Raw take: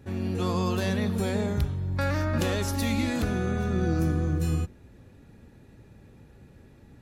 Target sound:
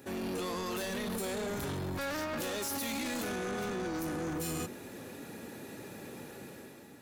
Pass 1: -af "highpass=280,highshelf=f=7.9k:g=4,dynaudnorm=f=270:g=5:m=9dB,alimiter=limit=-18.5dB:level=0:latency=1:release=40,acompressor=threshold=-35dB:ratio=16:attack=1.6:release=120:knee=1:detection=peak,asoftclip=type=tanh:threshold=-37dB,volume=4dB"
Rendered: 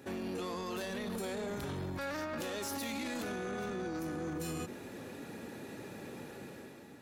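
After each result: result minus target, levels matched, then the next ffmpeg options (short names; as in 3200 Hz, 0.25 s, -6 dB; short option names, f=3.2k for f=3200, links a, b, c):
compressor: peak gain reduction +6.5 dB; 8000 Hz band -3.0 dB
-af "highpass=280,highshelf=f=7.9k:g=4,dynaudnorm=f=270:g=5:m=9dB,alimiter=limit=-18.5dB:level=0:latency=1:release=40,acompressor=threshold=-28.5dB:ratio=16:attack=1.6:release=120:knee=1:detection=peak,asoftclip=type=tanh:threshold=-37dB,volume=4dB"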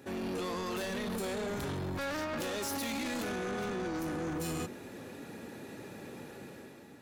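8000 Hz band -2.5 dB
-af "highpass=280,highshelf=f=7.9k:g=13,dynaudnorm=f=270:g=5:m=9dB,alimiter=limit=-18.5dB:level=0:latency=1:release=40,acompressor=threshold=-28.5dB:ratio=16:attack=1.6:release=120:knee=1:detection=peak,asoftclip=type=tanh:threshold=-37dB,volume=4dB"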